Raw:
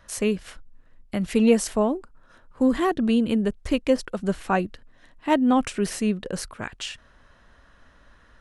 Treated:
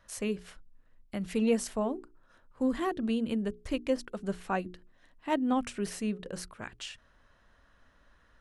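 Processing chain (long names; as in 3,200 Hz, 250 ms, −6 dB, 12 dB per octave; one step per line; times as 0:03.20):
mains-hum notches 60/120/180/240/300/360/420 Hz
level −8.5 dB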